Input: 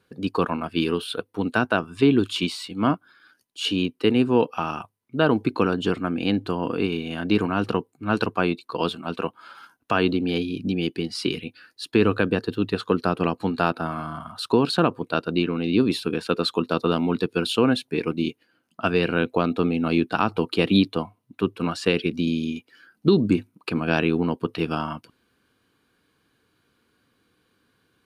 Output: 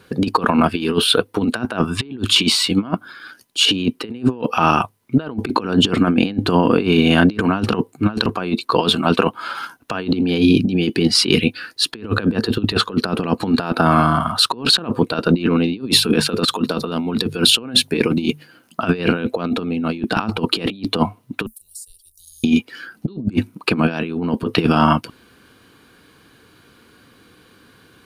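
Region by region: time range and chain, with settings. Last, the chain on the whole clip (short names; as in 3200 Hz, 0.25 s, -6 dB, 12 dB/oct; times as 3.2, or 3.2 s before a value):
15.8–18.83 high shelf 6700 Hz +5.5 dB + notches 50/100/150 Hz
21.46–22.44 inverse Chebyshev band-stop 120–2500 Hz, stop band 70 dB + three-band squash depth 70%
whole clip: dynamic EQ 220 Hz, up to +6 dB, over -38 dBFS, Q 5.6; negative-ratio compressor -27 dBFS, ratio -0.5; maximiser +12 dB; gain -1 dB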